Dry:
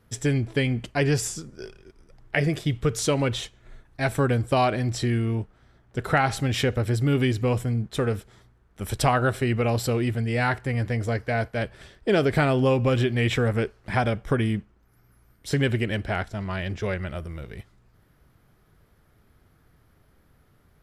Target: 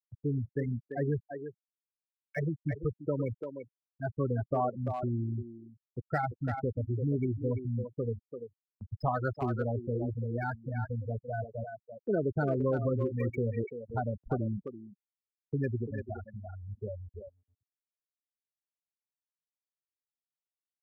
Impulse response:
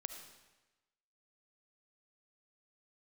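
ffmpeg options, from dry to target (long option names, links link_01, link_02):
-filter_complex "[0:a]afftfilt=real='re*gte(hypot(re,im),0.251)':imag='im*gte(hypot(re,im),0.251)':win_size=1024:overlap=0.75,agate=range=-15dB:threshold=-49dB:ratio=16:detection=peak,acrossover=split=260|1500|2300[link_01][link_02][link_03][link_04];[link_03]asoftclip=type=tanh:threshold=-33.5dB[link_05];[link_04]acrusher=bits=4:mode=log:mix=0:aa=0.000001[link_06];[link_01][link_02][link_05][link_06]amix=inputs=4:normalize=0,asplit=2[link_07][link_08];[link_08]adelay=340,highpass=300,lowpass=3400,asoftclip=type=hard:threshold=-16dB,volume=-6dB[link_09];[link_07][link_09]amix=inputs=2:normalize=0,volume=-8dB"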